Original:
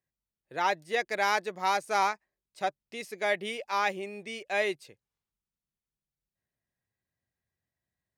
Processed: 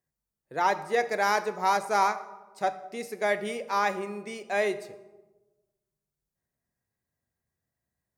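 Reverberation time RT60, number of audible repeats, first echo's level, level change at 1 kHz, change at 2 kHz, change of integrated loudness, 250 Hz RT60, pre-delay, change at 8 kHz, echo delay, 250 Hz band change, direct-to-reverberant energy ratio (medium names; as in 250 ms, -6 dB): 1.2 s, no echo, no echo, +3.0 dB, 0.0 dB, +2.0 dB, 1.4 s, 4 ms, +2.0 dB, no echo, +4.5 dB, 10.0 dB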